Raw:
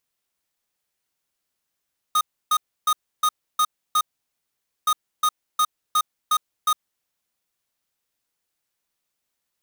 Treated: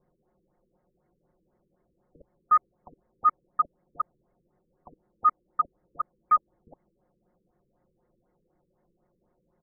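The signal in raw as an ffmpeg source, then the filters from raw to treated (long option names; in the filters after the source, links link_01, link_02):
-f lavfi -i "aevalsrc='0.119*(2*lt(mod(1240*t,1),0.5)-1)*clip(min(mod(mod(t,2.72),0.36),0.06-mod(mod(t,2.72),0.36))/0.005,0,1)*lt(mod(t,2.72),2.16)':duration=5.44:sample_rate=44100"
-filter_complex "[0:a]aecho=1:1:5.6:0.68,acrossover=split=720|1100[link_01][link_02][link_03];[link_01]aeval=exprs='0.0316*sin(PI/2*7.94*val(0)/0.0316)':channel_layout=same[link_04];[link_04][link_02][link_03]amix=inputs=3:normalize=0,afftfilt=real='re*lt(b*sr/1024,490*pow(2300/490,0.5+0.5*sin(2*PI*4*pts/sr)))':imag='im*lt(b*sr/1024,490*pow(2300/490,0.5+0.5*sin(2*PI*4*pts/sr)))':win_size=1024:overlap=0.75"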